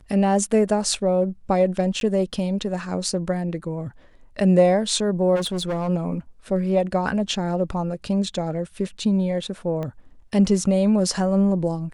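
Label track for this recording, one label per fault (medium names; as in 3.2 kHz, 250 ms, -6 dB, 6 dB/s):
2.000000	2.010000	dropout 12 ms
5.350000	5.890000	clipped -21.5 dBFS
9.830000	9.830000	pop -19 dBFS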